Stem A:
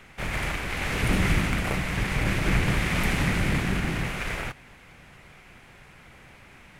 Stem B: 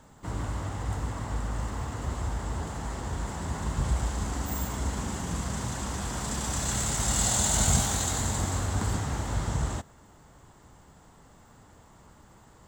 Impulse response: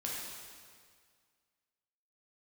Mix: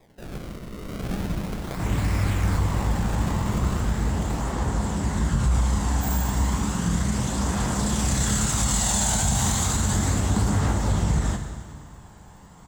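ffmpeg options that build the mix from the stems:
-filter_complex "[0:a]lowpass=frequency=3600:width=0.5412,lowpass=frequency=3600:width=1.3066,acrusher=samples=30:mix=1:aa=0.000001:lfo=1:lforange=48:lforate=0.35,volume=-8.5dB,asplit=2[link_01][link_02];[link_02]volume=-9dB[link_03];[1:a]aphaser=in_gain=1:out_gain=1:delay=1.3:decay=0.28:speed=0.33:type=triangular,adelay=1550,volume=1dB,asplit=2[link_04][link_05];[link_05]volume=-3.5dB[link_06];[2:a]atrim=start_sample=2205[link_07];[link_03][link_06]amix=inputs=2:normalize=0[link_08];[link_08][link_07]afir=irnorm=-1:irlink=0[link_09];[link_01][link_04][link_09]amix=inputs=3:normalize=0,equalizer=frequency=190:width=3.5:gain=5,alimiter=limit=-13dB:level=0:latency=1:release=48"

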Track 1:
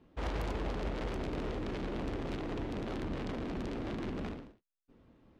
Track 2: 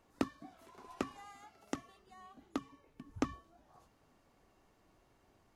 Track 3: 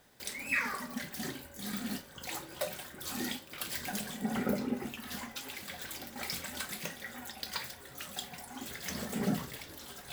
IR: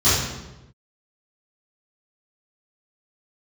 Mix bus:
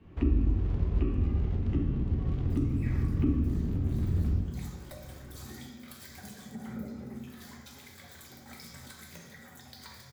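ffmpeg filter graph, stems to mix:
-filter_complex "[0:a]lowshelf=frequency=260:gain=12,alimiter=level_in=1dB:limit=-24dB:level=0:latency=1,volume=-1dB,volume=-1.5dB,asplit=2[link_01][link_02];[link_02]volume=-22.5dB[link_03];[1:a]lowpass=frequency=2600:width_type=q:width=4,equalizer=frequency=330:width=1.5:gain=14.5,volume=-10.5dB,asplit=2[link_04][link_05];[link_05]volume=-7.5dB[link_06];[2:a]equalizer=frequency=2800:width=5.9:gain=-10.5,adelay=2300,volume=-8.5dB,asplit=2[link_07][link_08];[link_08]volume=-22dB[link_09];[3:a]atrim=start_sample=2205[link_10];[link_03][link_06][link_09]amix=inputs=3:normalize=0[link_11];[link_11][link_10]afir=irnorm=-1:irlink=0[link_12];[link_01][link_04][link_07][link_12]amix=inputs=4:normalize=0,acrossover=split=230[link_13][link_14];[link_14]acompressor=threshold=-46dB:ratio=3[link_15];[link_13][link_15]amix=inputs=2:normalize=0"

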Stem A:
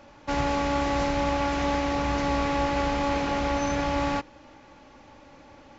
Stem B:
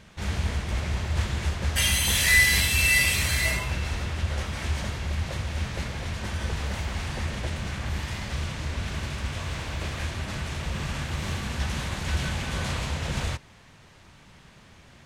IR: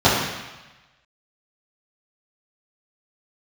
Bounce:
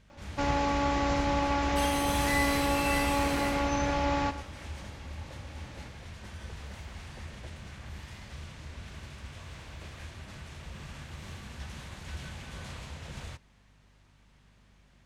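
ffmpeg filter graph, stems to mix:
-filter_complex "[0:a]adelay=100,volume=-2.5dB,asplit=2[link_01][link_02];[link_02]volume=-13dB[link_03];[1:a]volume=-13dB[link_04];[link_03]aecho=0:1:107:1[link_05];[link_01][link_04][link_05]amix=inputs=3:normalize=0,aeval=exprs='val(0)+0.000794*(sin(2*PI*50*n/s)+sin(2*PI*2*50*n/s)/2+sin(2*PI*3*50*n/s)/3+sin(2*PI*4*50*n/s)/4+sin(2*PI*5*50*n/s)/5)':channel_layout=same"

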